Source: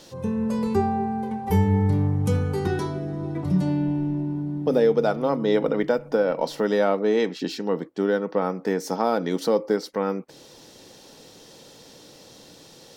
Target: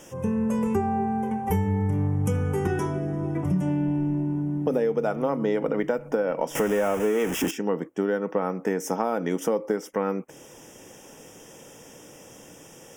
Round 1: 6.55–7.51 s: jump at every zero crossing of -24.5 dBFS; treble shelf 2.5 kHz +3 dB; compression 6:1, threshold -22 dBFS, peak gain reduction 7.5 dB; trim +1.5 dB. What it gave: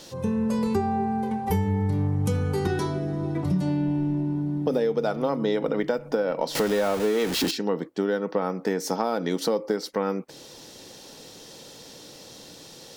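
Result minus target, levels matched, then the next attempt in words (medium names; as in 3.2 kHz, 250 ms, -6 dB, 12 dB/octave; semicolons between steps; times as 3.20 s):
4 kHz band +8.5 dB
6.55–7.51 s: jump at every zero crossing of -24.5 dBFS; Butterworth band-stop 4.2 kHz, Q 1.5; treble shelf 2.5 kHz +3 dB; compression 6:1, threshold -22 dBFS, peak gain reduction 7.5 dB; trim +1.5 dB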